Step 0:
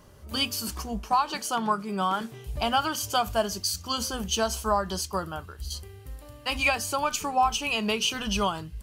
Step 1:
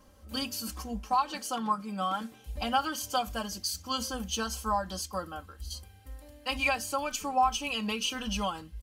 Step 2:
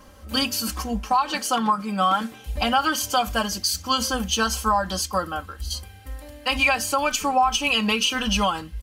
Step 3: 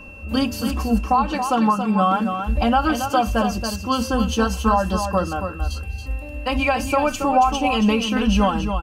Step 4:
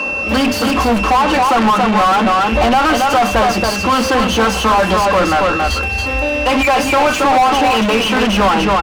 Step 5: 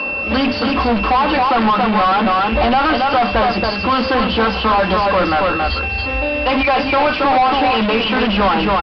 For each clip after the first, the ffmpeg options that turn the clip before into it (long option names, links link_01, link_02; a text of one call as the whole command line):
ffmpeg -i in.wav -af "aecho=1:1:3.8:0.91,volume=-7.5dB" out.wav
ffmpeg -i in.wav -af "equalizer=frequency=1800:width_type=o:width=2.1:gain=4,alimiter=limit=-20dB:level=0:latency=1:release=90,acontrast=73,volume=2.5dB" out.wav
ffmpeg -i in.wav -af "tiltshelf=frequency=1200:gain=8,aecho=1:1:277:0.422,aeval=exprs='val(0)+0.01*sin(2*PI*2700*n/s)':channel_layout=same" out.wav
ffmpeg -i in.wav -filter_complex "[0:a]asplit=2[link_01][link_02];[link_02]highpass=frequency=720:poles=1,volume=35dB,asoftclip=type=tanh:threshold=-5.5dB[link_03];[link_01][link_03]amix=inputs=2:normalize=0,lowpass=frequency=1700:poles=1,volume=-6dB,acrossover=split=170[link_04][link_05];[link_04]adelay=50[link_06];[link_06][link_05]amix=inputs=2:normalize=0,volume=1dB" out.wav
ffmpeg -i in.wav -af "aresample=11025,aresample=44100,volume=-2dB" out.wav